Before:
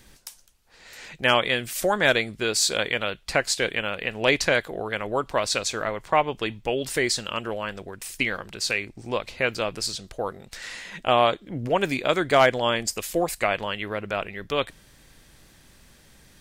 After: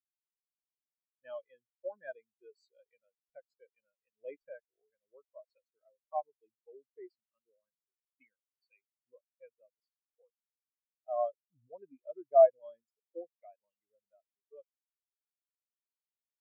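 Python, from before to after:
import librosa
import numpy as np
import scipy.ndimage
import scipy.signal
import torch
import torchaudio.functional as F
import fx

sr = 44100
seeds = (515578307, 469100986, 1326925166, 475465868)

y = fx.spectral_expand(x, sr, expansion=4.0)
y = F.gain(torch.from_numpy(y), -8.0).numpy()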